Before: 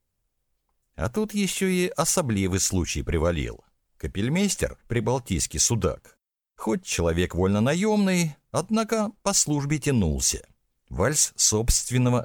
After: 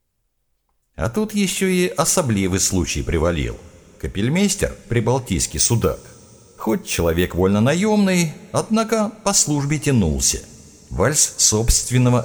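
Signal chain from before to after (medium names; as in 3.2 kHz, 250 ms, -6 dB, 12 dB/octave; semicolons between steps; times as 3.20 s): 5.46–7.41 s: careless resampling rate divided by 3×, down filtered, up hold; two-slope reverb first 0.37 s, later 4.9 s, from -20 dB, DRR 13.5 dB; trim +5.5 dB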